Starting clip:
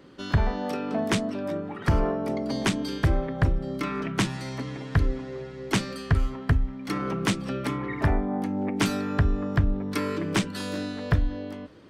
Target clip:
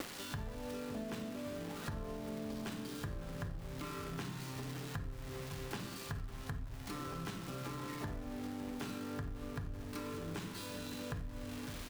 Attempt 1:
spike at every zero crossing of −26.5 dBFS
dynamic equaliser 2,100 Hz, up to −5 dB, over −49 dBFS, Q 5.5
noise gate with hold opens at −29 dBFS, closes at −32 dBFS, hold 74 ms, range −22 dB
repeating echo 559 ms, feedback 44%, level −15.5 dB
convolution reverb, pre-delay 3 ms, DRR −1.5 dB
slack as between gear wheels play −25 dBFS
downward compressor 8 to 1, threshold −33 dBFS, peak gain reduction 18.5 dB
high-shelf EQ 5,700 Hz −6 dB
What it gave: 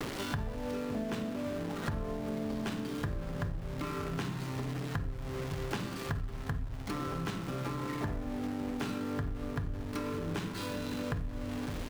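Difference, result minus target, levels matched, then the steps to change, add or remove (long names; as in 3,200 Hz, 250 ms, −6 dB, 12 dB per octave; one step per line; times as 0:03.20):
downward compressor: peak gain reduction −6.5 dB; spike at every zero crossing: distortion −6 dB
change: spike at every zero crossing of −20 dBFS
change: downward compressor 8 to 1, threshold −40.5 dBFS, peak gain reduction 25 dB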